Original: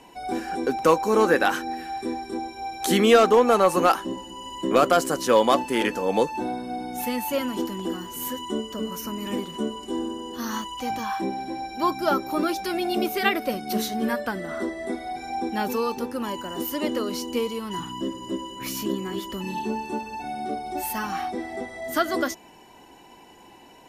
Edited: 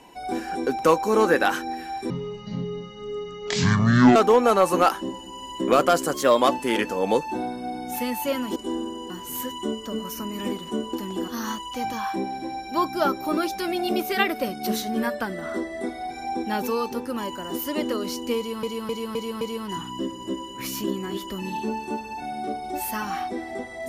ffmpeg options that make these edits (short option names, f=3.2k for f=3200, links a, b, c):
-filter_complex "[0:a]asplit=13[a][b][c][d][e][f][g][h][i][j][k][l][m];[a]atrim=end=2.104[n];[b]atrim=start=2.1:end=3.19,asetpts=PTS-STARTPTS,asetrate=23373,aresample=44100,atrim=end_sample=90696,asetpts=PTS-STARTPTS[o];[c]atrim=start=3.186:end=5.174[p];[d]atrim=start=5.17:end=5.48,asetpts=PTS-STARTPTS,asetrate=48069,aresample=44100,atrim=end_sample=12542,asetpts=PTS-STARTPTS[q];[e]atrim=start=5.476:end=7.622[r];[f]atrim=start=9.798:end=10.342[s];[g]atrim=start=7.968:end=9.802[t];[h]atrim=start=7.618:end=7.972[u];[i]atrim=start=10.338:end=17.692[v];[j]atrim=start=17.428:end=17.692[w];[k]atrim=start=17.428:end=17.692[x];[l]atrim=start=17.428:end=17.692[y];[m]atrim=start=17.428[z];[n][o]acrossfade=d=0.004:c1=hsin:c2=hsin[aa];[aa][p]acrossfade=d=0.004:c1=hsin:c2=hsin[ab];[ab][q]acrossfade=d=0.004:c1=hsin:c2=hsin[ac];[ac][r]acrossfade=d=0.004:c1=hsin:c2=hsin[ad];[ad][s]acrossfade=d=0.004:c1=hsin:c2=hsin[ae];[ae][t]acrossfade=d=0.004:c1=hsin:c2=hsin[af];[af][u]acrossfade=d=0.004:c1=hsin:c2=hsin[ag];[ag][v]acrossfade=d=0.004:c1=hsin:c2=hsin[ah];[ah][w]acrossfade=d=0.004:c1=hsin:c2=hsin[ai];[ai][x]acrossfade=d=0.004:c1=hsin:c2=hsin[aj];[aj][y]acrossfade=d=0.004:c1=hsin:c2=hsin[ak];[ak][z]acrossfade=d=0.004:c1=hsin:c2=hsin"